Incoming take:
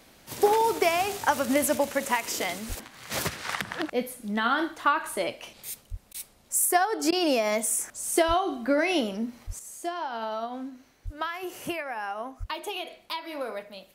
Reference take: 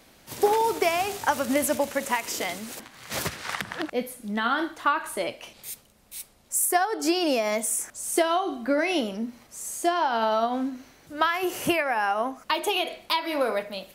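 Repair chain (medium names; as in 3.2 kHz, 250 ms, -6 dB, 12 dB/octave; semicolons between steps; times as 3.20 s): de-plosive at 2.68/5.90/8.27/9.46/11.04/12.39 s; interpolate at 6.13/7.11 s, 12 ms; trim 0 dB, from 9.59 s +8.5 dB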